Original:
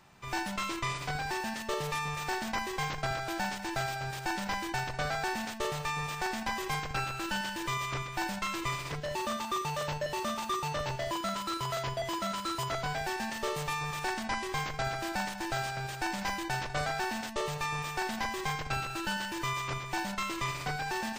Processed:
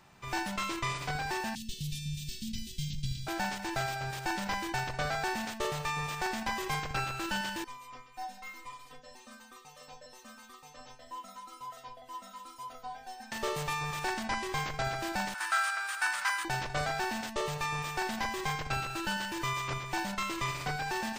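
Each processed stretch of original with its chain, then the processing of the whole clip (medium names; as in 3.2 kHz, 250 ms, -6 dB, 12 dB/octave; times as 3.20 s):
1.55–3.27 s: Chebyshev band-stop 210–3300 Hz, order 3 + bass shelf 200 Hz +6.5 dB
7.64–13.32 s: inharmonic resonator 250 Hz, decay 0.28 s, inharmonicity 0.002 + dynamic bell 660 Hz, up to +6 dB, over -59 dBFS, Q 1.3
15.34–16.45 s: resonant high-pass 1.3 kHz, resonance Q 3.9 + peaking EQ 9.1 kHz +11 dB 0.31 oct
whole clip: none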